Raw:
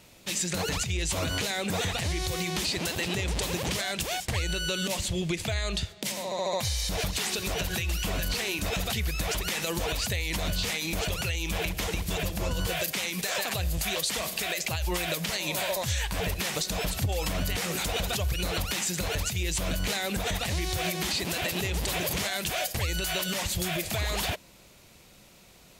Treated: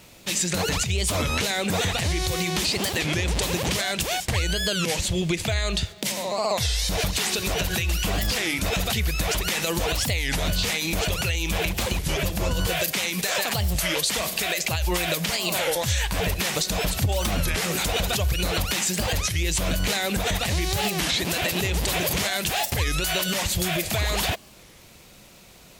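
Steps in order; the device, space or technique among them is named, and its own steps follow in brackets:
warped LP (wow of a warped record 33 1/3 rpm, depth 250 cents; surface crackle 140 per second −48 dBFS; white noise bed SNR 45 dB)
level +5 dB

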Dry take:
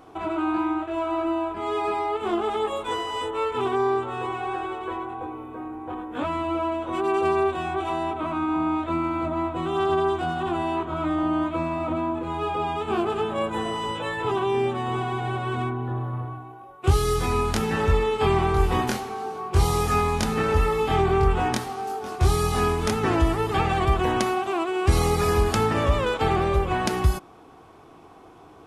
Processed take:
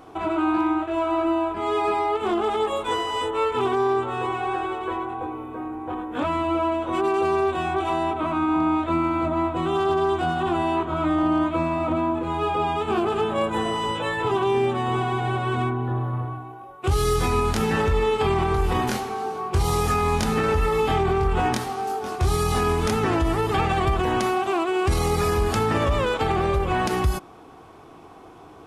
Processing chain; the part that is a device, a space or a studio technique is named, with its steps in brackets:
limiter into clipper (brickwall limiter −15.5 dBFS, peak gain reduction 7.5 dB; hard clipping −16.5 dBFS, distortion −36 dB)
level +3 dB

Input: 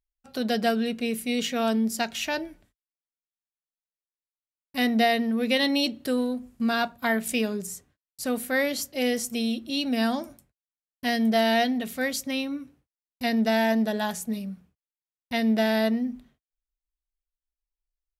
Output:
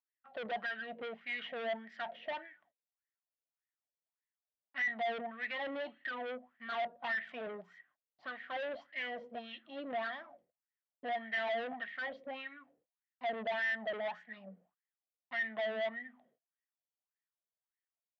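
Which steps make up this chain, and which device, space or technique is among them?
wah-wah guitar rig (LFO wah 1.7 Hz 460–1,900 Hz, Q 7.5; tube saturation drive 45 dB, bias 0.25; loudspeaker in its box 83–3,800 Hz, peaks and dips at 120 Hz −7 dB, 170 Hz +5 dB, 420 Hz −4 dB, 690 Hz +7 dB, 1,900 Hz +9 dB, 3,200 Hz +9 dB)
level +6 dB

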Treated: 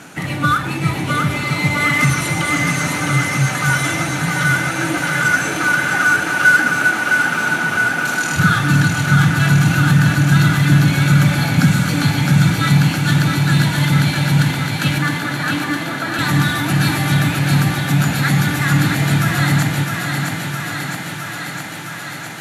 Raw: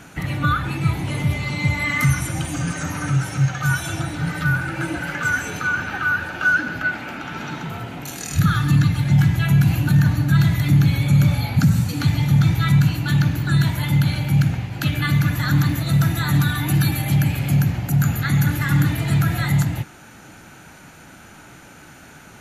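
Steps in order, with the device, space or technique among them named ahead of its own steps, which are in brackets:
early wireless headset (high-pass filter 160 Hz 12 dB per octave; variable-slope delta modulation 64 kbit/s)
0:14.98–0:16.19: elliptic band-pass filter 280–1,800 Hz
feedback echo with a high-pass in the loop 661 ms, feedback 78%, high-pass 210 Hz, level −4.5 dB
feedback delay with all-pass diffusion 885 ms, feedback 56%, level −12 dB
level +5.5 dB

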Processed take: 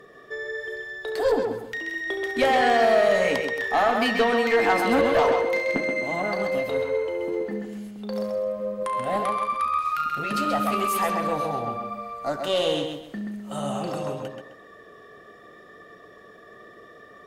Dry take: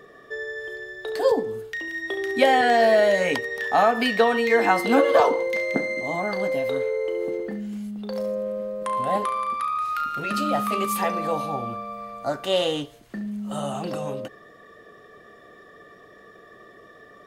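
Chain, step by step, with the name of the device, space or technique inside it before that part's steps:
rockabilly slapback (tube saturation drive 14 dB, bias 0.3; tape delay 131 ms, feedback 34%, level −4 dB, low-pass 5,700 Hz)

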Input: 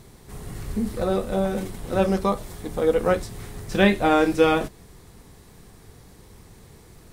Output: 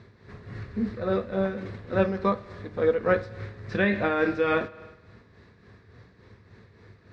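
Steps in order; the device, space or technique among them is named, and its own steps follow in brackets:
combo amplifier with spring reverb and tremolo (spring reverb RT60 1.2 s, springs 49 ms, chirp 65 ms, DRR 14 dB; amplitude tremolo 3.5 Hz, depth 53%; loudspeaker in its box 93–4,000 Hz, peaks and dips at 100 Hz +7 dB, 150 Hz −6 dB, 310 Hz −4 dB, 800 Hz −9 dB, 1,700 Hz +6 dB, 3,100 Hz −9 dB)

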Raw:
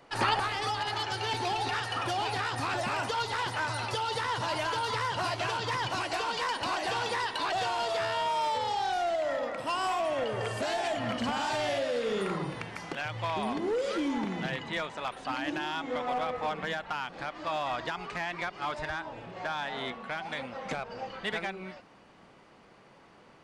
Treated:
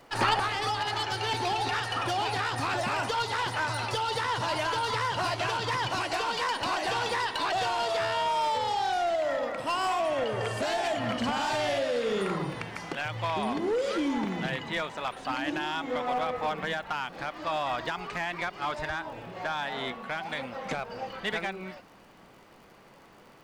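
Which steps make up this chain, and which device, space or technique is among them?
record under a worn stylus (stylus tracing distortion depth 0.021 ms; surface crackle 61 per second −49 dBFS; pink noise bed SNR 39 dB)
level +2 dB

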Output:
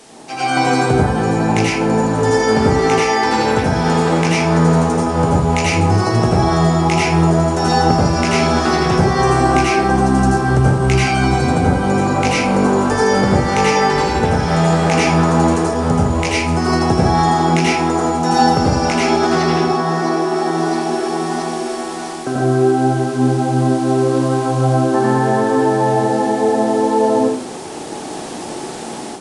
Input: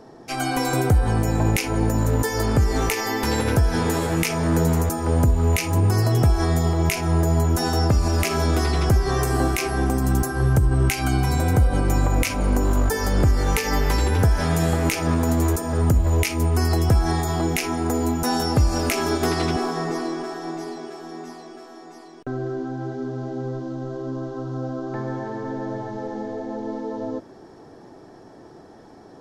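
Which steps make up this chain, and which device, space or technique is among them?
filmed off a television (band-pass filter 150–6,900 Hz; parametric band 840 Hz +5 dB 0.36 octaves; convolution reverb RT60 0.60 s, pre-delay 77 ms, DRR −6 dB; white noise bed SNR 25 dB; automatic gain control; level −1 dB; AAC 96 kbit/s 22,050 Hz)

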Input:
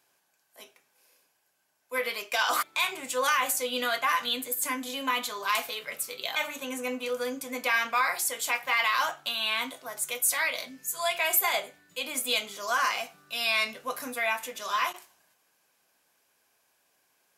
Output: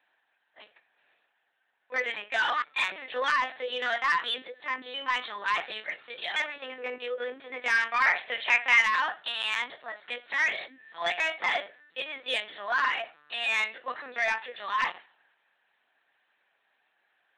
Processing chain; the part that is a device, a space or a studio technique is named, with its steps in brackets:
talking toy (linear-prediction vocoder at 8 kHz pitch kept; high-pass filter 430 Hz 12 dB per octave; parametric band 1,800 Hz +10.5 dB 0.23 octaves; soft clipping −17 dBFS, distortion −17 dB)
0:08.02–0:08.81: graphic EQ with 15 bands 100 Hz +6 dB, 630 Hz +7 dB, 2,500 Hz +9 dB

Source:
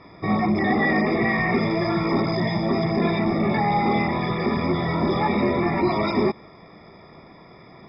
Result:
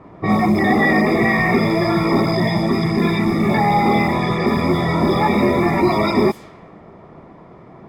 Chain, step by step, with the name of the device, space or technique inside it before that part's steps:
0:02.66–0:03.49: parametric band 630 Hz −9.5 dB 0.66 octaves
cassette deck with a dynamic noise filter (white noise bed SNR 29 dB; low-pass that shuts in the quiet parts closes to 1,000 Hz, open at −18.5 dBFS)
level +5.5 dB

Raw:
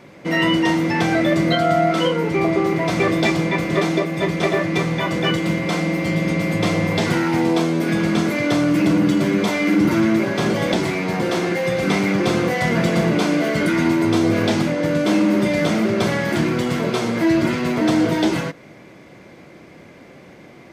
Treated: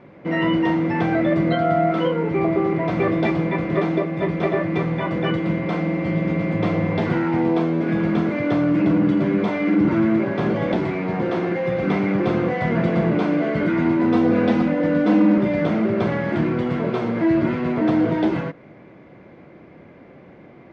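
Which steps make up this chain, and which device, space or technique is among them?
0:13.99–0:15.38: comb filter 4 ms, depth 78%
phone in a pocket (low-pass filter 3,100 Hz 12 dB per octave; high-shelf EQ 2,300 Hz −10 dB)
level −1 dB

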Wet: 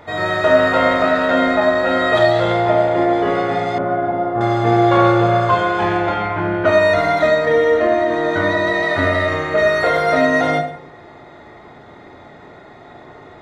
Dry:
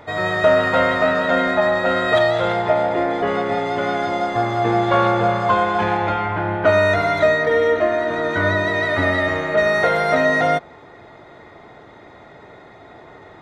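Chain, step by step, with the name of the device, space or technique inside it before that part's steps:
bathroom (convolution reverb RT60 0.55 s, pre-delay 22 ms, DRR 2.5 dB)
0:03.78–0:04.41: low-pass filter 1,200 Hz 12 dB per octave

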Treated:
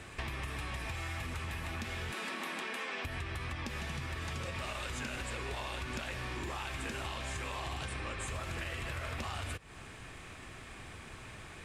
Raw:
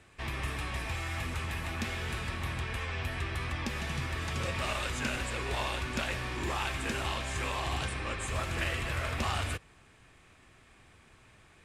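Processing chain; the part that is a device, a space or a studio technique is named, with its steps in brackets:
0:02.12–0:03.05: Butterworth high-pass 200 Hz 48 dB per octave
serial compression, leveller first (downward compressor 3 to 1, threshold −36 dBFS, peak gain reduction 6.5 dB; downward compressor 5 to 1, threshold −48 dBFS, peak gain reduction 13 dB)
level +10.5 dB

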